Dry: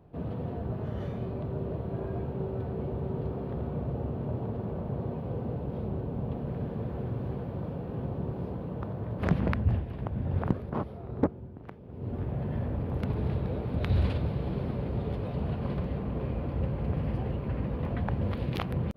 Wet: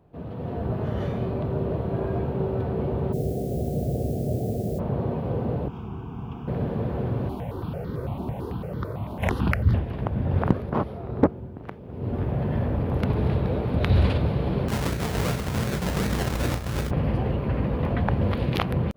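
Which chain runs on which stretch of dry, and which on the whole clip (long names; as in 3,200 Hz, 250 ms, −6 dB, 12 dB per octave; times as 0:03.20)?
0:03.12–0:04.78: Chebyshev low-pass filter 750 Hz, order 8 + background noise blue −59 dBFS
0:05.68–0:06.48: low-shelf EQ 480 Hz −7.5 dB + phaser with its sweep stopped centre 2,800 Hz, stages 8
0:07.29–0:09.74: high-shelf EQ 3,400 Hz +11 dB + notch filter 1,700 Hz, Q 13 + step-sequenced phaser 9 Hz 490–2,600 Hz
0:14.68–0:16.91: sample-and-hold swept by an LFO 30×, swing 60% 2.7 Hz + compressor whose output falls as the input rises −33 dBFS, ratio −0.5 + flutter between parallel walls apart 5.7 metres, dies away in 0.23 s
whole clip: low-shelf EQ 340 Hz −3 dB; automatic gain control gain up to 9 dB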